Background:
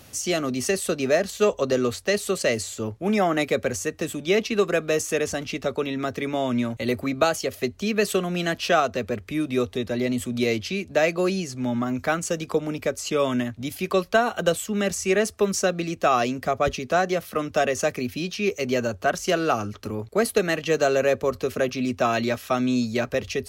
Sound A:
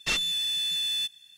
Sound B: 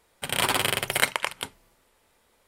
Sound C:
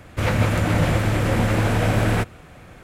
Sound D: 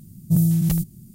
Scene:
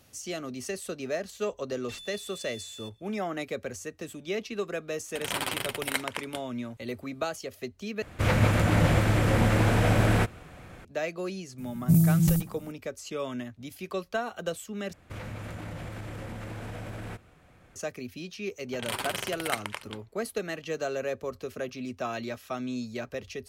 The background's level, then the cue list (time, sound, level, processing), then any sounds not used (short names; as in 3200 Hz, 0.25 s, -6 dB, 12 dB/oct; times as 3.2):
background -11 dB
1.82 add A -17.5 dB
4.92 add B -7.5 dB
8.02 replace with C -3 dB
11.58 add D -2.5 dB + narrowing echo 64 ms, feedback 66%, level -5.5 dB
14.93 replace with C -13.5 dB + compressor, threshold -21 dBFS
18.5 add B -9.5 dB + low-pass opened by the level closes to 1000 Hz, open at -24.5 dBFS